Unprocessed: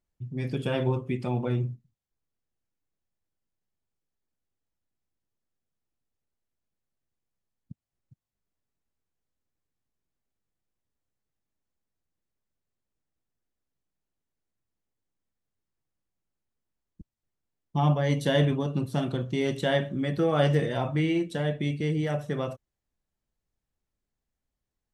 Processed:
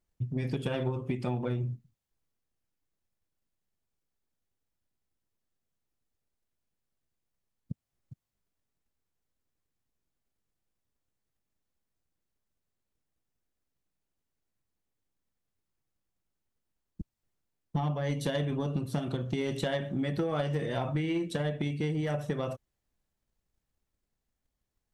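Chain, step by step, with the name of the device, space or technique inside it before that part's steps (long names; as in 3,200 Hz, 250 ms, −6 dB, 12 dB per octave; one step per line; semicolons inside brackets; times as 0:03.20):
drum-bus smash (transient designer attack +8 dB, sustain +3 dB; downward compressor, threshold −26 dBFS, peak gain reduction 11.5 dB; soft clipping −20.5 dBFS, distortion −19 dB)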